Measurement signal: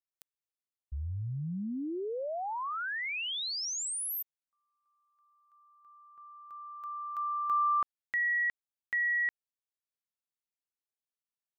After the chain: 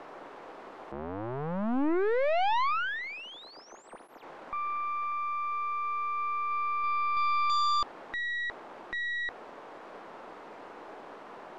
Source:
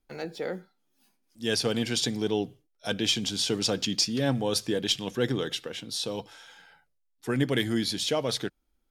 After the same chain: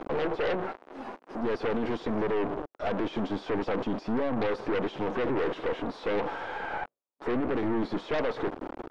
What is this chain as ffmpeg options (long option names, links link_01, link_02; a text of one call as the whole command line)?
ffmpeg -i in.wav -af "aeval=exprs='val(0)+0.5*0.0398*sgn(val(0))':channel_layout=same,alimiter=limit=-20.5dB:level=0:latency=1:release=25,asuperpass=centerf=560:order=4:qfactor=0.68,aeval=exprs='0.1*(cos(1*acos(clip(val(0)/0.1,-1,1)))-cos(1*PI/2))+0.0316*(cos(5*acos(clip(val(0)/0.1,-1,1)))-cos(5*PI/2))+0.01*(cos(6*acos(clip(val(0)/0.1,-1,1)))-cos(6*PI/2))+0.0282*(cos(8*acos(clip(val(0)/0.1,-1,1)))-cos(8*PI/2))':channel_layout=same,volume=-2dB" out.wav